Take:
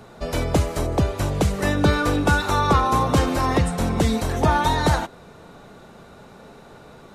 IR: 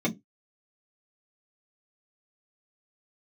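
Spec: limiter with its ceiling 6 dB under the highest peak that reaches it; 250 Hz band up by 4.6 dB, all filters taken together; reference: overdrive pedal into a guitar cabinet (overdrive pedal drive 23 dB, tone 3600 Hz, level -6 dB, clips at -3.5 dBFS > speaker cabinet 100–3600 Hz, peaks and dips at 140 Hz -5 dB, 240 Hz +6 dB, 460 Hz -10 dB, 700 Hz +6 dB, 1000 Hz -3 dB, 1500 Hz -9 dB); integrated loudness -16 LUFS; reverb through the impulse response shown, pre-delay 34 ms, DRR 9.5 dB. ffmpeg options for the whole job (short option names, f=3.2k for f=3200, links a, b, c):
-filter_complex "[0:a]equalizer=f=250:t=o:g=3.5,alimiter=limit=-11dB:level=0:latency=1,asplit=2[a][b];[1:a]atrim=start_sample=2205,adelay=34[c];[b][c]afir=irnorm=-1:irlink=0,volume=-19dB[d];[a][d]amix=inputs=2:normalize=0,asplit=2[e][f];[f]highpass=f=720:p=1,volume=23dB,asoftclip=type=tanh:threshold=-3.5dB[g];[e][g]amix=inputs=2:normalize=0,lowpass=f=3.6k:p=1,volume=-6dB,highpass=100,equalizer=f=140:t=q:w=4:g=-5,equalizer=f=240:t=q:w=4:g=6,equalizer=f=460:t=q:w=4:g=-10,equalizer=f=700:t=q:w=4:g=6,equalizer=f=1k:t=q:w=4:g=-3,equalizer=f=1.5k:t=q:w=4:g=-9,lowpass=f=3.6k:w=0.5412,lowpass=f=3.6k:w=1.3066,volume=-3dB"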